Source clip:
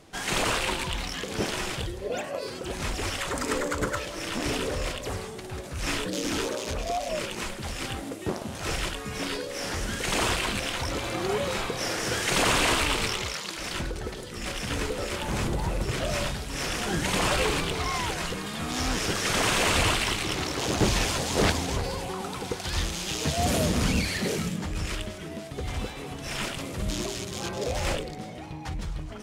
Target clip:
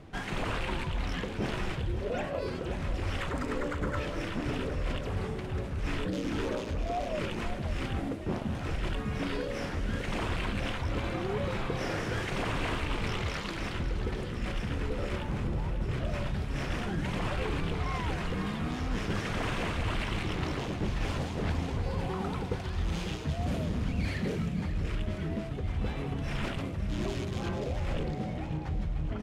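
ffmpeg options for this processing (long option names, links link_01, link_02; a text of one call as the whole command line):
ffmpeg -i in.wav -af "bass=frequency=250:gain=9,treble=frequency=4000:gain=-14,bandreject=frequency=60:width_type=h:width=6,bandreject=frequency=120:width_type=h:width=6,bandreject=frequency=180:width_type=h:width=6,areverse,acompressor=threshold=-29dB:ratio=6,areverse,aecho=1:1:542|1084|1626|2168|2710|3252:0.266|0.144|0.0776|0.0419|0.0226|0.0122" out.wav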